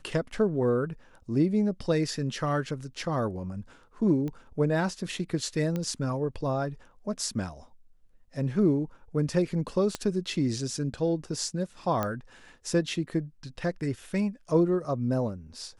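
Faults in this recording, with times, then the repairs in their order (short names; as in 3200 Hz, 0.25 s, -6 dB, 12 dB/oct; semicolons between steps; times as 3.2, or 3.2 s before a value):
4.28 pop -24 dBFS
5.76 pop -19 dBFS
9.95 pop -16 dBFS
12.03 pop -15 dBFS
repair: de-click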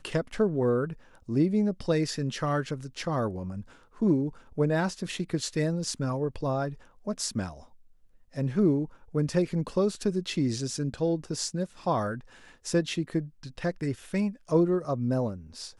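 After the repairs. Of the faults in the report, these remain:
9.95 pop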